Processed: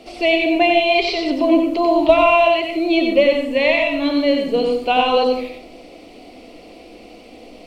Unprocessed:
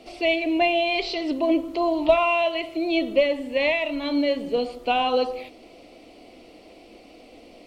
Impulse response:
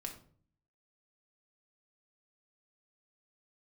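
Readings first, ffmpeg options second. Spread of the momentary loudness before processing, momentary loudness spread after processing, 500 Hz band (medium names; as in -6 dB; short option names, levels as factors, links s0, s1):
7 LU, 6 LU, +7.0 dB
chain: -filter_complex "[0:a]asplit=2[s0][s1];[1:a]atrim=start_sample=2205,adelay=92[s2];[s1][s2]afir=irnorm=-1:irlink=0,volume=0.891[s3];[s0][s3]amix=inputs=2:normalize=0,volume=1.78"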